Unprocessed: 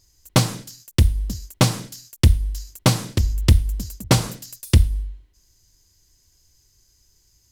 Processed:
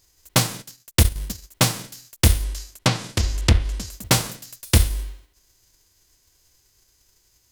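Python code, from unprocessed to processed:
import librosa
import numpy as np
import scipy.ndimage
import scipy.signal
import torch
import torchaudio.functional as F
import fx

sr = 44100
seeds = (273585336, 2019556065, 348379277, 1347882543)

y = fx.envelope_flatten(x, sr, power=0.6)
y = fx.transient(y, sr, attack_db=2, sustain_db=-10, at=(0.59, 1.52))
y = fx.env_lowpass_down(y, sr, base_hz=2500.0, full_db=-9.0, at=(2.43, 3.93))
y = F.gain(torch.from_numpy(y), -2.0).numpy()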